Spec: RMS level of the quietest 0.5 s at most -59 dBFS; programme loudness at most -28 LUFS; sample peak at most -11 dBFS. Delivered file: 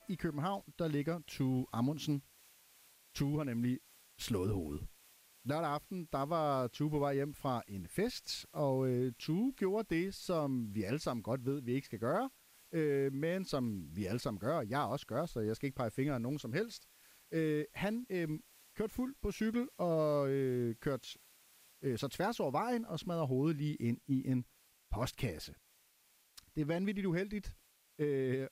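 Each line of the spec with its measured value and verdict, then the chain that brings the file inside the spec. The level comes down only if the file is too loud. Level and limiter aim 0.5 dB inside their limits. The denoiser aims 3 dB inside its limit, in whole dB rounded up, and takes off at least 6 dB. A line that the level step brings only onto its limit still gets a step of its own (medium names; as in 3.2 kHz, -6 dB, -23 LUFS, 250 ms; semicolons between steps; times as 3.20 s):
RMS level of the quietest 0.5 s -70 dBFS: pass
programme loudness -37.5 LUFS: pass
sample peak -23.5 dBFS: pass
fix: none needed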